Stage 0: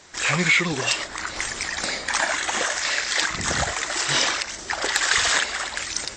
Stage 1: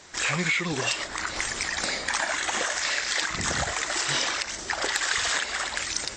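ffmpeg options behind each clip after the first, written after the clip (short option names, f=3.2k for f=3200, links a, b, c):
-af "acompressor=threshold=-24dB:ratio=3"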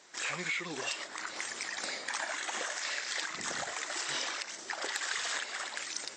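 -af "highpass=250,volume=-9dB"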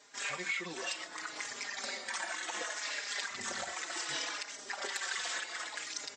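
-filter_complex "[0:a]asplit=2[a][b];[b]adelay=4.4,afreqshift=-0.67[c];[a][c]amix=inputs=2:normalize=1,volume=1dB"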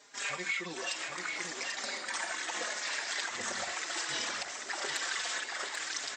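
-af "aecho=1:1:788:0.531,volume=1.5dB"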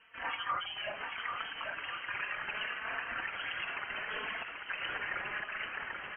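-af "lowpass=f=2.9k:t=q:w=0.5098,lowpass=f=2.9k:t=q:w=0.6013,lowpass=f=2.9k:t=q:w=0.9,lowpass=f=2.9k:t=q:w=2.563,afreqshift=-3400"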